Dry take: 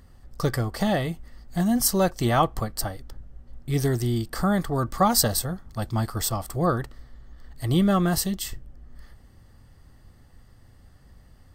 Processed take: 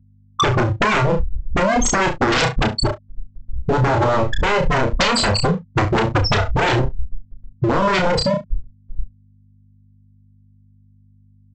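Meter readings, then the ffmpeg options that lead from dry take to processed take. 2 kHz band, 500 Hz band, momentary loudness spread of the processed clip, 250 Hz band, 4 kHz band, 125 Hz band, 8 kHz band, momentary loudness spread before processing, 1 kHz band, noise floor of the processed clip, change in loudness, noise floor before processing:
+14.5 dB, +8.0 dB, 16 LU, +2.5 dB, +9.0 dB, +5.5 dB, +1.0 dB, 12 LU, +8.5 dB, -52 dBFS, +6.5 dB, -53 dBFS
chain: -filter_complex "[0:a]afftfilt=real='re*pow(10,12/40*sin(2*PI*(0.98*log(max(b,1)*sr/1024/100)/log(2)-(0.38)*(pts-256)/sr)))':imag='im*pow(10,12/40*sin(2*PI*(0.98*log(max(b,1)*sr/1024/100)/log(2)-(0.38)*(pts-256)/sr)))':win_size=1024:overlap=0.75,bandreject=f=366.5:t=h:w=4,bandreject=f=733:t=h:w=4,bandreject=f=1.0995k:t=h:w=4,afftfilt=real='re*gte(hypot(re,im),0.224)':imag='im*gte(hypot(re,im),0.224)':win_size=1024:overlap=0.75,acrossover=split=130|3800[a][b][c];[a]acompressor=threshold=-37dB:ratio=4[d];[b]acompressor=threshold=-27dB:ratio=4[e];[c]acompressor=threshold=-32dB:ratio=4[f];[d][e][f]amix=inputs=3:normalize=0,aresample=16000,aeval=exprs='0.0237*(abs(mod(val(0)/0.0237+3,4)-2)-1)':c=same,aresample=44100,aeval=exprs='val(0)+0.000224*(sin(2*PI*50*n/s)+sin(2*PI*2*50*n/s)/2+sin(2*PI*3*50*n/s)/3+sin(2*PI*4*50*n/s)/4+sin(2*PI*5*50*n/s)/5)':c=same,asplit=2[g][h];[h]adelay=30,volume=-13dB[i];[g][i]amix=inputs=2:normalize=0,aecho=1:1:32|70:0.531|0.15,alimiter=level_in=32dB:limit=-1dB:release=50:level=0:latency=1,volume=-8.5dB"

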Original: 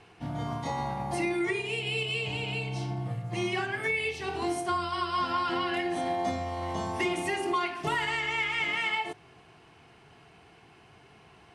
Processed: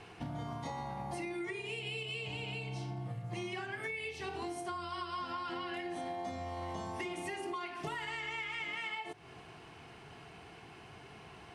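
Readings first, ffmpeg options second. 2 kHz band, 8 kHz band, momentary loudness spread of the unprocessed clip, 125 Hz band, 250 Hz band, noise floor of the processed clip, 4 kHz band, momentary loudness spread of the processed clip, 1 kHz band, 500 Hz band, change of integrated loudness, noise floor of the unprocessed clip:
-10.0 dB, -9.0 dB, 6 LU, -7.5 dB, -9.5 dB, -54 dBFS, -9.0 dB, 14 LU, -9.5 dB, -9.5 dB, -9.5 dB, -57 dBFS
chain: -af "acompressor=threshold=-42dB:ratio=5,volume=3dB"

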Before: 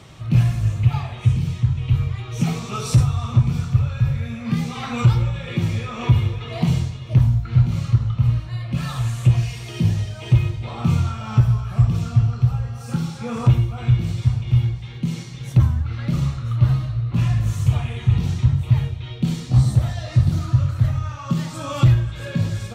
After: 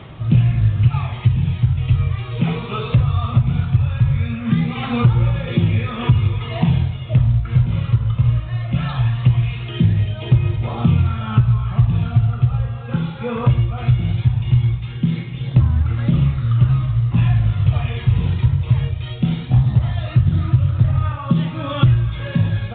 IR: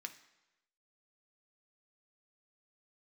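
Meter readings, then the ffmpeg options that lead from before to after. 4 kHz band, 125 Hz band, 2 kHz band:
+2.0 dB, +2.5 dB, +3.0 dB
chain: -af "aphaser=in_gain=1:out_gain=1:delay=2.1:decay=0.33:speed=0.19:type=triangular,acompressor=threshold=-15dB:ratio=3,volume=4dB" -ar 8000 -c:a pcm_mulaw

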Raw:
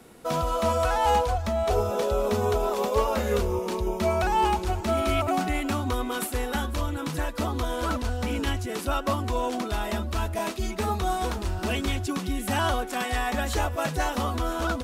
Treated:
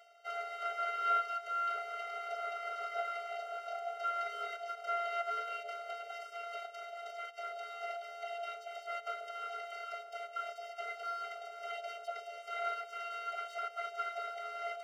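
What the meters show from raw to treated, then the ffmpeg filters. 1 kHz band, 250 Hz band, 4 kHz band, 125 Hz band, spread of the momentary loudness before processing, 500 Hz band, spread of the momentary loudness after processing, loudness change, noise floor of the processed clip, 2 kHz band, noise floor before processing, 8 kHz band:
-10.5 dB, under -40 dB, -14.5 dB, under -40 dB, 6 LU, -15.5 dB, 8 LU, -12.5 dB, -51 dBFS, -10.0 dB, -34 dBFS, -23.0 dB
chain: -filter_complex "[0:a]highpass=150,equalizer=f=330:t=q:w=4:g=6,equalizer=f=500:t=q:w=4:g=9,equalizer=f=750:t=q:w=4:g=8,equalizer=f=2.1k:t=q:w=4:g=5,lowpass=f=5k:w=0.5412,lowpass=f=5k:w=1.3066,areverse,acompressor=mode=upward:threshold=-26dB:ratio=2.5,areverse,aeval=exprs='abs(val(0))':c=same,acrossover=split=2700[a][b];[b]acompressor=threshold=-46dB:ratio=4:attack=1:release=60[c];[a][c]amix=inputs=2:normalize=0,afftfilt=real='hypot(re,im)*cos(PI*b)':imag='0':win_size=512:overlap=0.75,afftfilt=real='re*eq(mod(floor(b*sr/1024/390),2),1)':imag='im*eq(mod(floor(b*sr/1024/390),2),1)':win_size=1024:overlap=0.75,volume=-4dB"

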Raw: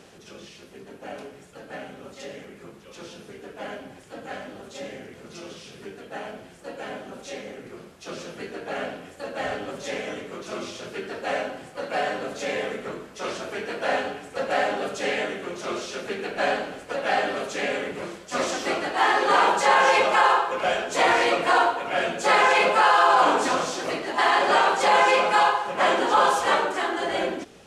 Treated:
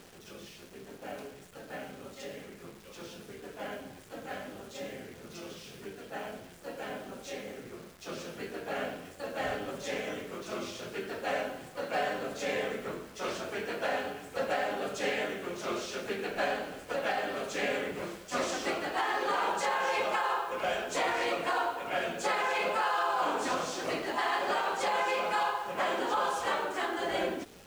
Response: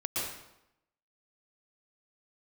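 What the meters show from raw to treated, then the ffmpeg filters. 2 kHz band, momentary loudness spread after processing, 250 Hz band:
-9.5 dB, 16 LU, -6.5 dB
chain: -af "lowshelf=f=70:g=6.5,alimiter=limit=-16dB:level=0:latency=1:release=443,acrusher=bits=9:dc=4:mix=0:aa=0.000001,volume=-4.5dB"

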